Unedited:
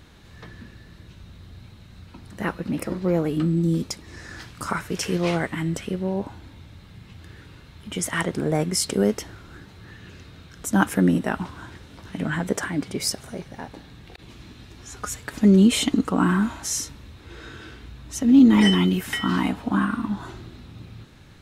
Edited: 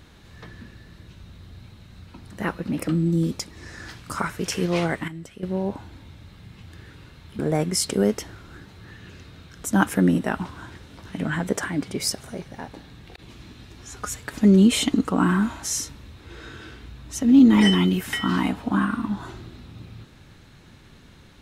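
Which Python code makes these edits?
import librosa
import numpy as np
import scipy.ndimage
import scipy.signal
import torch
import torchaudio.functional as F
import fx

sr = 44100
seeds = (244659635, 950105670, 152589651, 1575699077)

y = fx.edit(x, sr, fx.cut(start_s=2.88, length_s=0.51),
    fx.clip_gain(start_s=5.59, length_s=0.35, db=-11.5),
    fx.cut(start_s=7.9, length_s=0.49), tone=tone)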